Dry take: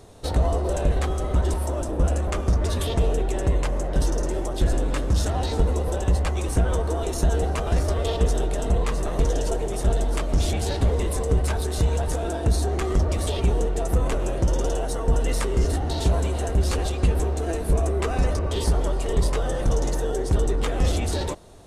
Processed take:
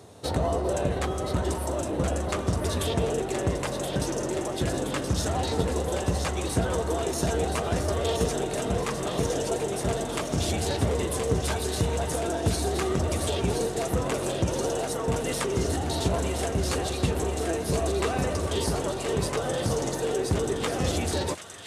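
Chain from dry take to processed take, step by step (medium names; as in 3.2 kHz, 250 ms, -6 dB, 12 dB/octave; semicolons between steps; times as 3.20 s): high-pass 86 Hz 24 dB/octave; on a send: feedback echo behind a high-pass 1023 ms, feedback 65%, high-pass 1.7 kHz, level -5 dB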